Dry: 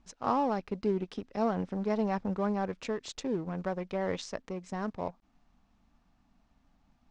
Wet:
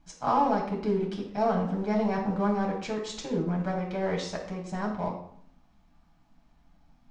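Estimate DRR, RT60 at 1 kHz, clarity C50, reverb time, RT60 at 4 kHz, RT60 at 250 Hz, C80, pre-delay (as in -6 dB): -2.0 dB, 0.65 s, 5.5 dB, 0.65 s, 0.50 s, 0.85 s, 9.5 dB, 6 ms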